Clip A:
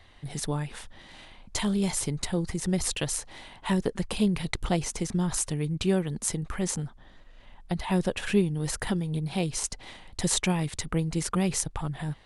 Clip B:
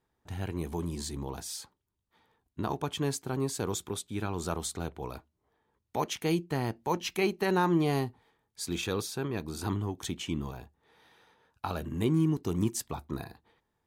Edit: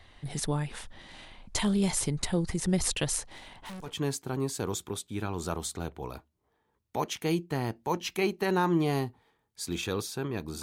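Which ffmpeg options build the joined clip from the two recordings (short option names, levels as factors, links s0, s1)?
-filter_complex "[0:a]asettb=1/sr,asplit=3[s0][s1][s2];[s0]atrim=end=3.264[s3];[s1]atrim=start=3.26:end=3.97,asetpts=PTS-STARTPTS,afade=t=in:d=0.004:c=qsin,afade=t=out:st=0.706:d=0.004:c=qsin,aeval=exprs='(tanh(100*val(0)+0.3)-tanh(0.3))/100':c=same[s4];[s2]atrim=start=3.966[s5];[s3][s4]acrossfade=d=0.004:c1=hsin:c2=qsin[s6];[s6][s5]acrossfade=d=0.004:c1=qsin:c2=hsin,apad=whole_dur=10.62,atrim=end=10.62,atrim=end=3.97,asetpts=PTS-STARTPTS[s7];[1:a]atrim=start=2.79:end=9.62,asetpts=PTS-STARTPTS[s8];[s7][s8]acrossfade=d=0.18:c1=tri:c2=tri"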